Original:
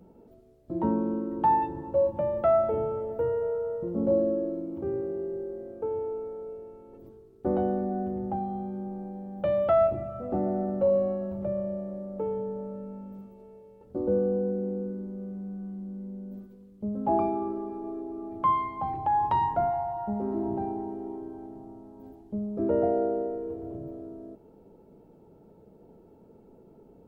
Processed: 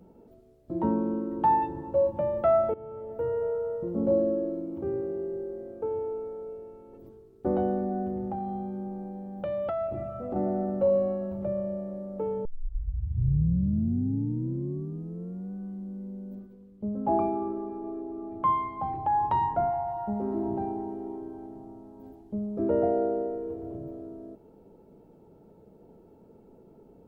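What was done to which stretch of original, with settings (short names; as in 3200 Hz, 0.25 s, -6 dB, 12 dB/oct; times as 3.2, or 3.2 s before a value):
2.74–3.42 fade in, from -19.5 dB
8.2–10.36 compressor, threshold -28 dBFS
12.45 tape start 3.08 s
16.35–19.87 high shelf 3200 Hz -8 dB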